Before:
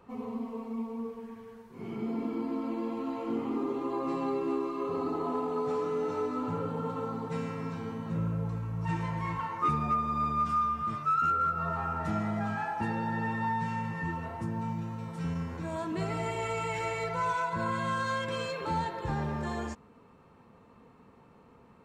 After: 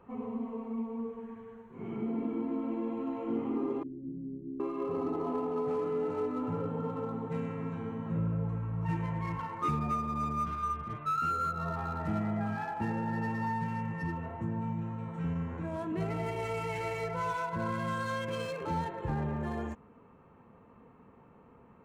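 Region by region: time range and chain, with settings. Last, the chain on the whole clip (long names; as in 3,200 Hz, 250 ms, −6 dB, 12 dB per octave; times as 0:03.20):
0:03.83–0:04.60: inverse Chebyshev low-pass filter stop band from 860 Hz, stop band 60 dB + double-tracking delay 46 ms −11 dB
0:10.45–0:11.06: elliptic low-pass filter 4,200 Hz + double-tracking delay 16 ms −2.5 dB
whole clip: adaptive Wiener filter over 9 samples; dynamic equaliser 1,200 Hz, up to −4 dB, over −45 dBFS, Q 1; notch filter 3,600 Hz, Q 26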